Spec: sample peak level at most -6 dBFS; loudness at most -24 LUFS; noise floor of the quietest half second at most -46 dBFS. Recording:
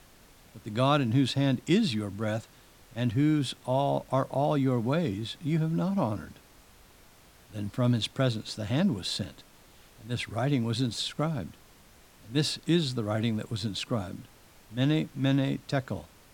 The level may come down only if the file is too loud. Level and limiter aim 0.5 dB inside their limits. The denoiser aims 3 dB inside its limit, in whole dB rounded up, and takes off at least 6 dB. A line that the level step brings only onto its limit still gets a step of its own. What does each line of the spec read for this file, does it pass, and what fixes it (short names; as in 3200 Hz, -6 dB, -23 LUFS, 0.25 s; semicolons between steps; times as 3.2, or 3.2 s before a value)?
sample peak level -10.5 dBFS: OK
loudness -29.0 LUFS: OK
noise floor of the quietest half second -56 dBFS: OK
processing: none